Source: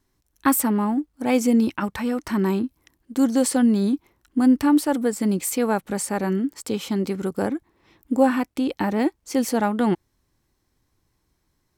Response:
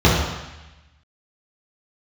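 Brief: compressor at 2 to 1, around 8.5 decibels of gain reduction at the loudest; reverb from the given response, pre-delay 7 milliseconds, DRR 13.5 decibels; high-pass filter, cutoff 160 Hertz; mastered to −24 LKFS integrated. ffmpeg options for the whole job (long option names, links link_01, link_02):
-filter_complex "[0:a]highpass=160,acompressor=threshold=-29dB:ratio=2,asplit=2[link_01][link_02];[1:a]atrim=start_sample=2205,adelay=7[link_03];[link_02][link_03]afir=irnorm=-1:irlink=0,volume=-38dB[link_04];[link_01][link_04]amix=inputs=2:normalize=0,volume=5.5dB"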